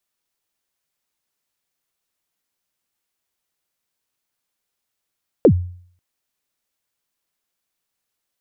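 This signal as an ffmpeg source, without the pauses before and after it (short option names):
-f lavfi -i "aevalsrc='0.596*pow(10,-3*t/0.55)*sin(2*PI*(560*0.076/log(89/560)*(exp(log(89/560)*min(t,0.076)/0.076)-1)+89*max(t-0.076,0)))':d=0.54:s=44100"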